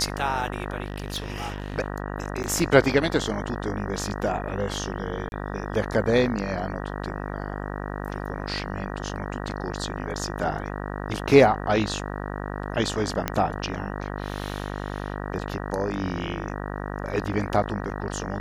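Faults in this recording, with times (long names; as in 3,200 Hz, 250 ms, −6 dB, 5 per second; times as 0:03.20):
mains buzz 50 Hz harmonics 38 −32 dBFS
0:00.84–0:01.76: clipping −25.5 dBFS
0:02.43–0:02.44: drop-out 9.8 ms
0:05.29–0:05.32: drop-out 31 ms
0:09.09: drop-out 4.1 ms
0:13.28: click −9 dBFS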